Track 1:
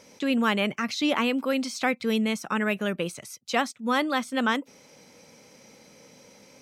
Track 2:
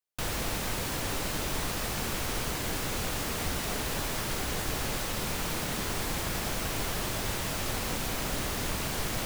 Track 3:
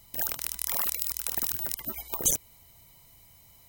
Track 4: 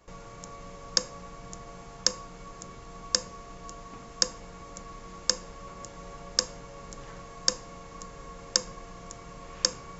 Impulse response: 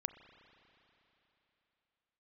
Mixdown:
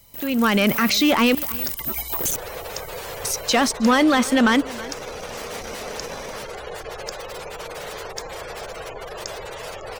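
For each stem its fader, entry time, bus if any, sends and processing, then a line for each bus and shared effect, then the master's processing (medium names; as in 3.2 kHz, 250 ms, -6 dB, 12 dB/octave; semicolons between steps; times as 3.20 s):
-10.0 dB, 0.00 s, muted 1.35–3.24 s, bus A, no send, echo send -15 dB, level rider gain up to 10 dB; waveshaping leveller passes 2
+1.0 dB, 2.15 s, no bus, no send, no echo send, spectral gate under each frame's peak -20 dB strong; resonant low shelf 350 Hz -9.5 dB, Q 3
+3.0 dB, 0.00 s, bus A, no send, no echo send, compression, threshold -28 dBFS, peak gain reduction 9 dB; saturation -34 dBFS, distortion -5 dB
-10.5 dB, 0.70 s, no bus, no send, no echo send, none
bus A: 0.0 dB, level rider gain up to 11.5 dB; peak limiter -11 dBFS, peak gain reduction 8 dB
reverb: none
echo: delay 318 ms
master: none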